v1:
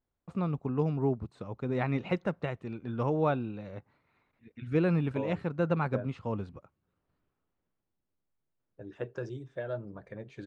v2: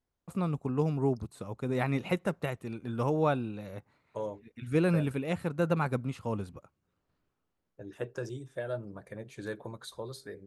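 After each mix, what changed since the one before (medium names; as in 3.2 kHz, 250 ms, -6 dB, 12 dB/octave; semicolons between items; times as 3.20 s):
second voice: entry -1.00 s; master: remove distance through air 160 m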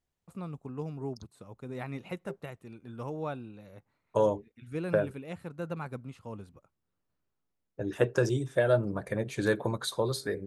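first voice -8.5 dB; second voice +11.0 dB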